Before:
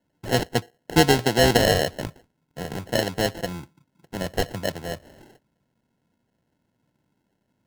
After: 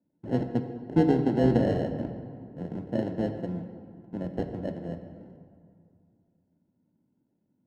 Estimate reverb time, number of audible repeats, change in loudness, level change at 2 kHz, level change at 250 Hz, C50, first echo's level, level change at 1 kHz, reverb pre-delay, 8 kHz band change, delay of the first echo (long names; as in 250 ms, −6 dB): 2.4 s, no echo audible, −6.0 dB, −18.0 dB, +0.5 dB, 8.0 dB, no echo audible, −10.5 dB, 3 ms, below −30 dB, no echo audible